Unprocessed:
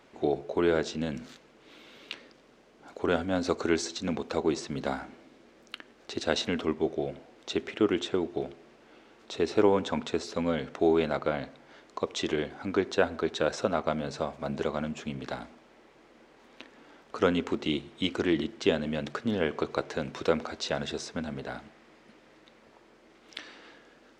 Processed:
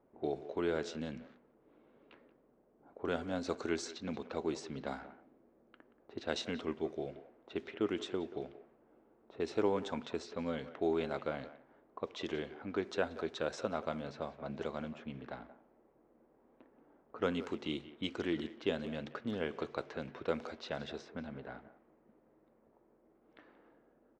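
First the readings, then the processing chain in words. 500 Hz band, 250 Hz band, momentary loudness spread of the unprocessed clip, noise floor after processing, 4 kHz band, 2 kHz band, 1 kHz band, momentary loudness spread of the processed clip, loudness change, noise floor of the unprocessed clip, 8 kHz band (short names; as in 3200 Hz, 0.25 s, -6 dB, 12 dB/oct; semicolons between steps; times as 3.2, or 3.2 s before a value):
-9.0 dB, -9.0 dB, 17 LU, -70 dBFS, -10.0 dB, -9.0 dB, -9.0 dB, 12 LU, -9.0 dB, -59 dBFS, -11.0 dB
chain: speakerphone echo 0.18 s, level -14 dB; low-pass opened by the level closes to 710 Hz, open at -24.5 dBFS; gain -9 dB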